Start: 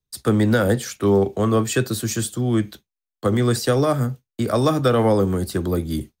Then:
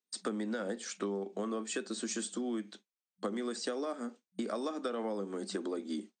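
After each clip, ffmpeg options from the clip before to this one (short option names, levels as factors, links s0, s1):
-af "afftfilt=real='re*between(b*sr/4096,190,8800)':imag='im*between(b*sr/4096,190,8800)':win_size=4096:overlap=0.75,acompressor=threshold=0.0398:ratio=10,volume=0.562"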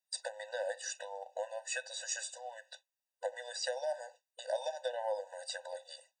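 -af "afftfilt=real='re*eq(mod(floor(b*sr/1024/500),2),1)':imag='im*eq(mod(floor(b*sr/1024/500),2),1)':win_size=1024:overlap=0.75,volume=1.68"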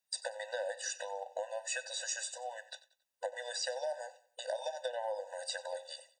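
-af "acompressor=threshold=0.0141:ratio=6,aecho=1:1:92|184|276:0.126|0.0466|0.0172,volume=1.5"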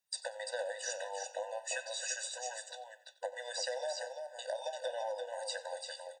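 -af "flanger=delay=5.5:depth=5.1:regen=89:speed=0.47:shape=triangular,aecho=1:1:342:0.531,volume=1.5"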